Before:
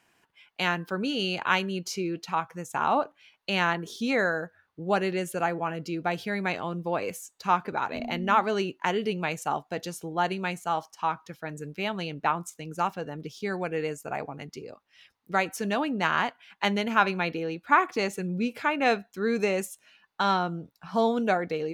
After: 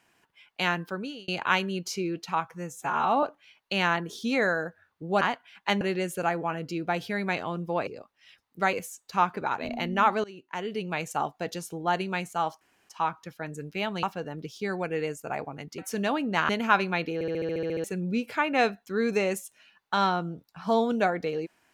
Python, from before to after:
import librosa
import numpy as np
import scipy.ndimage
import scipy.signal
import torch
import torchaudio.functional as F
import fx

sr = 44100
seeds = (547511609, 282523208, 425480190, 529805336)

y = fx.edit(x, sr, fx.fade_out_span(start_s=0.81, length_s=0.47),
    fx.stretch_span(start_s=2.54, length_s=0.46, factor=1.5),
    fx.fade_in_from(start_s=8.55, length_s=0.86, floor_db=-22.0),
    fx.insert_room_tone(at_s=10.92, length_s=0.28),
    fx.cut(start_s=12.06, length_s=0.78),
    fx.move(start_s=14.59, length_s=0.86, to_s=7.04),
    fx.move(start_s=16.16, length_s=0.6, to_s=4.98),
    fx.stutter_over(start_s=17.41, slice_s=0.07, count=10), tone=tone)